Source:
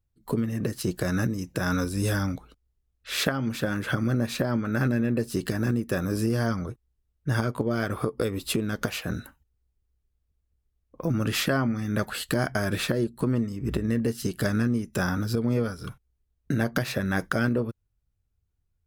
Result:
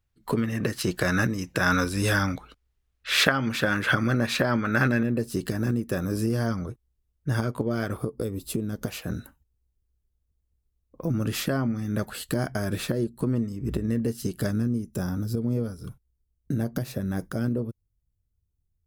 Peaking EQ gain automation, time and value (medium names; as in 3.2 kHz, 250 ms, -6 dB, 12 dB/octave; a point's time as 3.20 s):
peaking EQ 2 kHz 2.9 oct
+8.5 dB
from 5.03 s -3 dB
from 7.97 s -13.5 dB
from 8.86 s -6 dB
from 14.51 s -14 dB